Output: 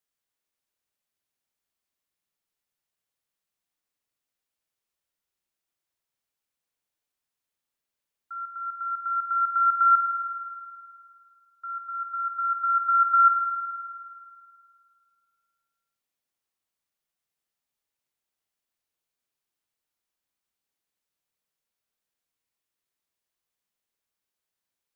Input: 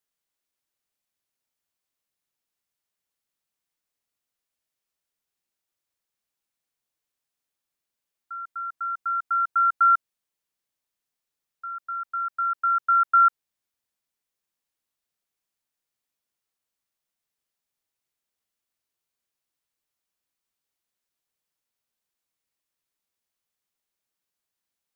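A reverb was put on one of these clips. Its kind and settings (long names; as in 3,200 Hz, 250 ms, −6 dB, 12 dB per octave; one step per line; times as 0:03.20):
spring reverb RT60 2.3 s, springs 51 ms, chirp 25 ms, DRR 4.5 dB
level −2 dB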